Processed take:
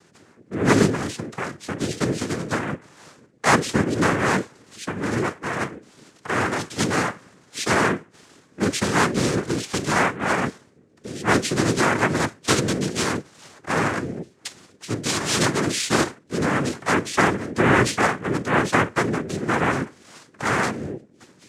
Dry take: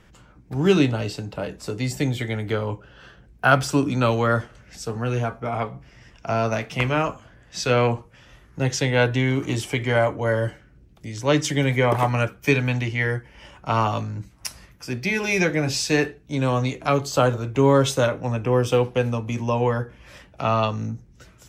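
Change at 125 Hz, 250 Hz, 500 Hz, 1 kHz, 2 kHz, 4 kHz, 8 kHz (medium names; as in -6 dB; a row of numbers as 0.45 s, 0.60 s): -4.0 dB, +1.5 dB, -2.5 dB, +2.0 dB, +3.0 dB, +2.5 dB, +5.5 dB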